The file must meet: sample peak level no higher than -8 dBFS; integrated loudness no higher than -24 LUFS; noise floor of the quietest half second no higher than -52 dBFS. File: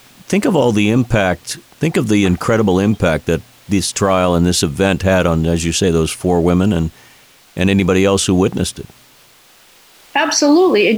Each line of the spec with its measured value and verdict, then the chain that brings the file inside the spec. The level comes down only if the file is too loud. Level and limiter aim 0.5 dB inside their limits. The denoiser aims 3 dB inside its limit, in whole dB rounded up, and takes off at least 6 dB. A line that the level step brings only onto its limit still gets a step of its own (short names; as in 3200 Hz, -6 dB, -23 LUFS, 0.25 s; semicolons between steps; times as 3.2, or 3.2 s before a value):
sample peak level -3.5 dBFS: fail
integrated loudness -15.0 LUFS: fail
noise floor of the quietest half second -47 dBFS: fail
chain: gain -9.5 dB